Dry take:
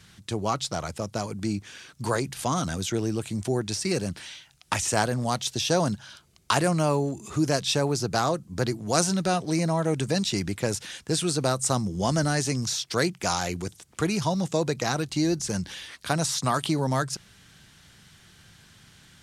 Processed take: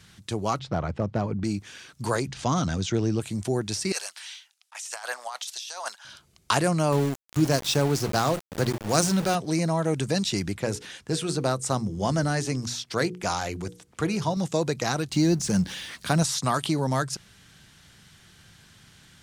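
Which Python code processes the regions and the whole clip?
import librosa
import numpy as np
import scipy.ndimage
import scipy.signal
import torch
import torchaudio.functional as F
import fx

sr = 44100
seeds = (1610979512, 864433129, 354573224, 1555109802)

y = fx.chain(x, sr, fx.lowpass(hz=2400.0, slope=12),
    fx.low_shelf(hz=450.0, db=7.0),
    fx.clip_hard(threshold_db=-17.0), at=(0.59, 1.44))
y = fx.chain(y, sr, fx.lowpass(hz=6800.0, slope=24),
    fx.low_shelf(hz=240.0, db=5.0), at=(2.27, 3.2))
y = fx.chain(y, sr, fx.highpass(hz=800.0, slope=24),
    fx.over_compress(threshold_db=-35.0, ratio=-1.0),
    fx.band_widen(depth_pct=100), at=(3.92, 6.05))
y = fx.chain(y, sr, fx.peak_eq(hz=120.0, db=4.0, octaves=2.5),
    fx.hum_notches(base_hz=60, count=6),
    fx.sample_gate(floor_db=-29.5), at=(6.92, 9.35))
y = fx.chain(y, sr, fx.high_shelf(hz=3600.0, db=-6.0),
    fx.hum_notches(base_hz=60, count=8), at=(10.53, 14.37))
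y = fx.chain(y, sr, fx.law_mismatch(coded='mu'),
    fx.peak_eq(hz=190.0, db=7.0, octaves=0.79), at=(15.12, 16.23))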